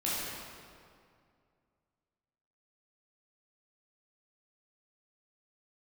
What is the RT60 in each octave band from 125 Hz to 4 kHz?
2.7 s, 2.4 s, 2.3 s, 2.2 s, 1.9 s, 1.5 s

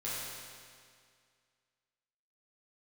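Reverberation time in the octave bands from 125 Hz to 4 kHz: 2.1 s, 2.1 s, 2.1 s, 2.1 s, 2.1 s, 2.0 s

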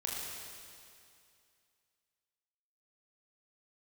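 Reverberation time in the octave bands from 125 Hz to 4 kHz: 2.4 s, 2.4 s, 2.4 s, 2.4 s, 2.4 s, 2.4 s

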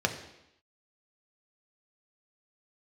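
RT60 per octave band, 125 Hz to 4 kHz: 0.75 s, 0.85 s, 0.80 s, 0.85 s, 0.85 s, 0.85 s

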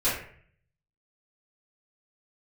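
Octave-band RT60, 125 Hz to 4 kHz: 0.95 s, 0.65 s, 0.60 s, 0.50 s, 0.60 s, 0.40 s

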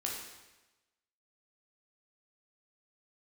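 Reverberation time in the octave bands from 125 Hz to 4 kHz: 1.1 s, 1.1 s, 1.1 s, 1.1 s, 1.1 s, 1.0 s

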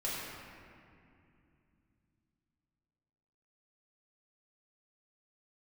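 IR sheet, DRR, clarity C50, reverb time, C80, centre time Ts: -8.5 dB, -2.5 dB, 2.5 s, -1.0 dB, 147 ms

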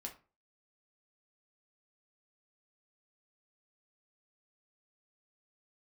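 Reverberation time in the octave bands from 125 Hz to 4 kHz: 0.40 s, 0.40 s, 0.35 s, 0.35 s, 0.30 s, 0.25 s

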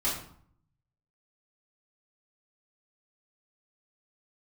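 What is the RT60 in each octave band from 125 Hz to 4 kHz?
1.2 s, 0.80 s, 0.55 s, 0.60 s, 0.45 s, 0.40 s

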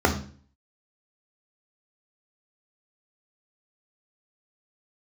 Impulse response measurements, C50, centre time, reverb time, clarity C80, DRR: 10.0 dB, 16 ms, 0.45 s, 14.5 dB, 1.5 dB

